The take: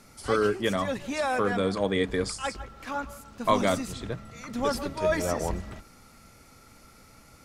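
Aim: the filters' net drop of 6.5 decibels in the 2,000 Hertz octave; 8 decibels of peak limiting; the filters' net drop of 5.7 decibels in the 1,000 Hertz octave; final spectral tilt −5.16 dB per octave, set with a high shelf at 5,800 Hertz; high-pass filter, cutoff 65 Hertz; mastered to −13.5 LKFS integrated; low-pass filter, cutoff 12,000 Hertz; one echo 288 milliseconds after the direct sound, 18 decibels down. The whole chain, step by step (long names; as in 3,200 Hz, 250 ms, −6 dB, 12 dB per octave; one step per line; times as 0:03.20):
high-pass filter 65 Hz
low-pass filter 12,000 Hz
parametric band 1,000 Hz −5.5 dB
parametric band 2,000 Hz −5.5 dB
high-shelf EQ 5,800 Hz −8 dB
brickwall limiter −20 dBFS
single-tap delay 288 ms −18 dB
level +19 dB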